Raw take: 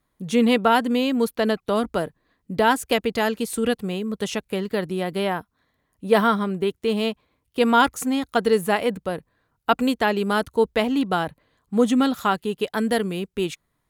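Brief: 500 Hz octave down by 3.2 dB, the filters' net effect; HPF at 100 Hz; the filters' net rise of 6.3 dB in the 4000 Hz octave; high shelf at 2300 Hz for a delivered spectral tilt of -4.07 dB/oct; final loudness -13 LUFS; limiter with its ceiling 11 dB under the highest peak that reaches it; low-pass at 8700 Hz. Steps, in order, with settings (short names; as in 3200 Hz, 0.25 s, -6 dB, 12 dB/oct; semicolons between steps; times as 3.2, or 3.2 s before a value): HPF 100 Hz; LPF 8700 Hz; bell 500 Hz -4 dB; high shelf 2300 Hz +3.5 dB; bell 4000 Hz +5.5 dB; gain +13.5 dB; limiter -1.5 dBFS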